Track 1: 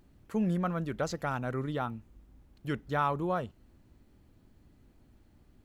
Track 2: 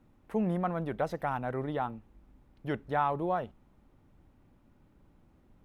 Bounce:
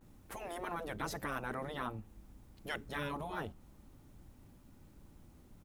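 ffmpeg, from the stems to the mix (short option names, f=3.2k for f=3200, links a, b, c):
-filter_complex "[0:a]volume=-7.5dB[a];[1:a]bass=f=250:g=3,treble=f=4k:g=14,adelay=9.7,volume=1dB[b];[a][b]amix=inputs=2:normalize=0,afftfilt=real='re*lt(hypot(re,im),0.1)':imag='im*lt(hypot(re,im),0.1)':win_size=1024:overlap=0.75,adynamicequalizer=threshold=0.00224:dfrequency=2100:dqfactor=0.7:tfrequency=2100:tqfactor=0.7:attack=5:release=100:ratio=0.375:range=2:mode=cutabove:tftype=highshelf"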